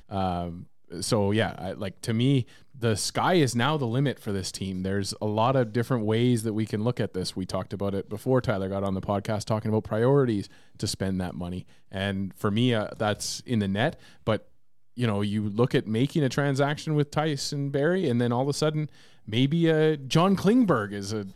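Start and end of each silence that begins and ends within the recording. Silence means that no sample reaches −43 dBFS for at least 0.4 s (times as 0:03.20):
0:14.42–0:14.97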